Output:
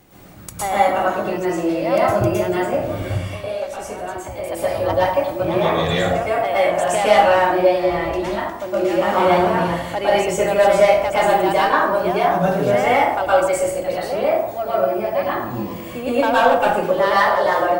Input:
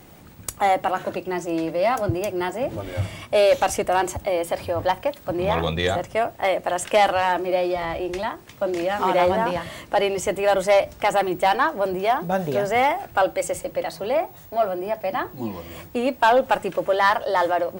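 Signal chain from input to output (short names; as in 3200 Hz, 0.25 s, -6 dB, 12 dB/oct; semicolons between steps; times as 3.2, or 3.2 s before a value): 3.04–4.44 compressor 6:1, threshold -30 dBFS, peak gain reduction 15.5 dB; plate-style reverb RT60 0.75 s, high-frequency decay 0.55×, pre-delay 0.1 s, DRR -9 dB; gain -5 dB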